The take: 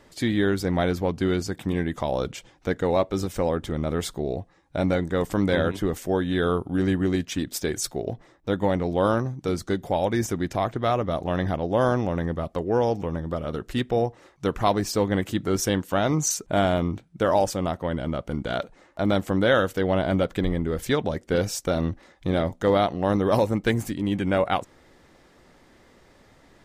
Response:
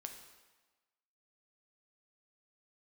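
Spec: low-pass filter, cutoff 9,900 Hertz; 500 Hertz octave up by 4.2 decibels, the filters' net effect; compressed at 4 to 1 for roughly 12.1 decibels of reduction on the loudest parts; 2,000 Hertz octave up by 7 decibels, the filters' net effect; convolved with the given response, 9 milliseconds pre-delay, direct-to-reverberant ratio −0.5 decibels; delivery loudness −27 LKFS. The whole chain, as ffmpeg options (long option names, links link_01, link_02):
-filter_complex "[0:a]lowpass=9900,equalizer=frequency=500:width_type=o:gain=4.5,equalizer=frequency=2000:width_type=o:gain=9,acompressor=threshold=-27dB:ratio=4,asplit=2[link_01][link_02];[1:a]atrim=start_sample=2205,adelay=9[link_03];[link_02][link_03]afir=irnorm=-1:irlink=0,volume=4.5dB[link_04];[link_01][link_04]amix=inputs=2:normalize=0,volume=0.5dB"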